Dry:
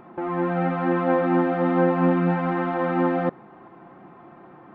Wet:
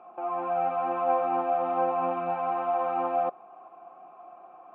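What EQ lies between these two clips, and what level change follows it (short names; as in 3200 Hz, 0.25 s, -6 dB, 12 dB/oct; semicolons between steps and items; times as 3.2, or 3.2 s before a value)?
vowel filter a; low shelf 410 Hz -4 dB; +7.0 dB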